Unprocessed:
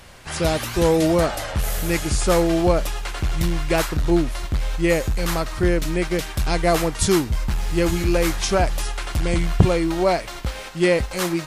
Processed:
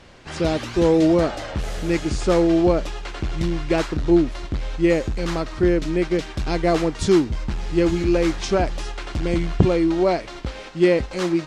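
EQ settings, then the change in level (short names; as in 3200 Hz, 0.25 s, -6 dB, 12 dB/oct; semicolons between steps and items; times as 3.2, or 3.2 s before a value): air absorption 130 m; bell 310 Hz +8 dB 1.5 oct; high shelf 4100 Hz +8.5 dB; -4.0 dB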